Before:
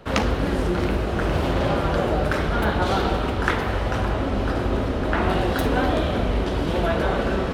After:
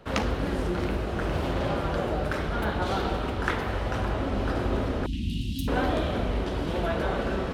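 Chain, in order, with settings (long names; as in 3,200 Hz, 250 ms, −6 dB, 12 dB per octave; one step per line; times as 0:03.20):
0:05.06–0:05.68: Chebyshev band-stop filter 270–2,800 Hz, order 4
speech leveller 2 s
level −5.5 dB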